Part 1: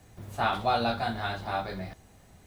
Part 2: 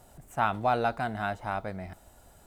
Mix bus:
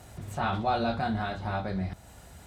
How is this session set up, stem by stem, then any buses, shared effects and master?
−5.0 dB, 0.00 s, no send, low-pass filter 6,800 Hz 12 dB per octave
−2.5 dB, 0.00 s, polarity flipped, no send, high-shelf EQ 9,100 Hz −7.5 dB; brickwall limiter −23.5 dBFS, peak gain reduction 10.5 dB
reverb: not used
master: high-pass filter 51 Hz; low-shelf EQ 270 Hz +9.5 dB; one half of a high-frequency compander encoder only

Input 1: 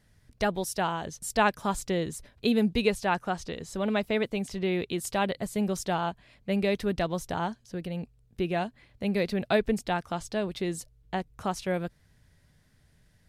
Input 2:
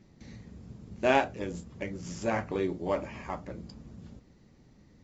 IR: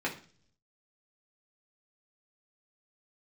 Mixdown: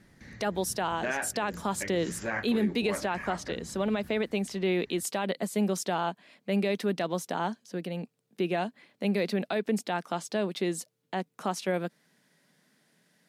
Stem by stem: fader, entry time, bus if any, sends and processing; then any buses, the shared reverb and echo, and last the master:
+2.0 dB, 0.00 s, no send, Butterworth high-pass 180 Hz 36 dB per octave
−2.0 dB, 0.00 s, no send, parametric band 1,700 Hz +14 dB 0.75 octaves; downward compressor 1.5 to 1, threshold −34 dBFS, peak gain reduction 7.5 dB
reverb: not used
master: brickwall limiter −18.5 dBFS, peak gain reduction 12 dB

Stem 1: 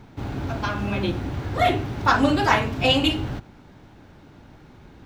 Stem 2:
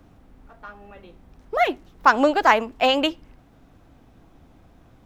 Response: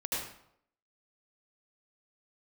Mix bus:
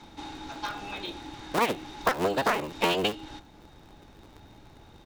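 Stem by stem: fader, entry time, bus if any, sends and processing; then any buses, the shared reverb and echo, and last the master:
−5.0 dB, 0.00 s, no send, meter weighting curve ITU-R 468; downward compressor, threshold −23 dBFS, peak gain reduction 14 dB; hollow resonant body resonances 310/840/3,700 Hz, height 17 dB, ringing for 55 ms; automatic ducking −8 dB, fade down 0.40 s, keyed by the second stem
−0.5 dB, 12 ms, polarity flipped, no send, sub-harmonics by changed cycles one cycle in 3, inverted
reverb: not used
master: downward compressor 16 to 1, threshold −21 dBFS, peak gain reduction 13 dB

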